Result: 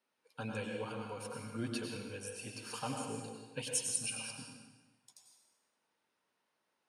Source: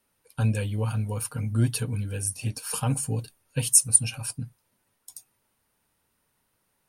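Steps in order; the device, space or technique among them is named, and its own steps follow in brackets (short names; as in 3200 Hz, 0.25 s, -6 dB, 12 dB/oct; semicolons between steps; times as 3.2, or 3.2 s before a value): supermarket ceiling speaker (BPF 280–5500 Hz; reverb RT60 1.2 s, pre-delay 89 ms, DRR 1 dB); 3.62–4.02 notch 1300 Hz, Q 8.9; gain -7.5 dB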